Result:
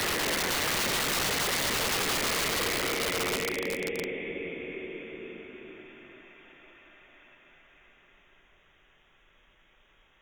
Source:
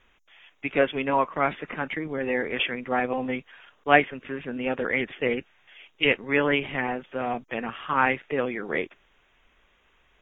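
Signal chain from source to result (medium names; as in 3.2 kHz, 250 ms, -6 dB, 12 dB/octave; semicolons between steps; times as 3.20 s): Paulstretch 29×, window 0.25 s, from 8.72 s; integer overflow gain 23.5 dB; reverse echo 201 ms -17.5 dB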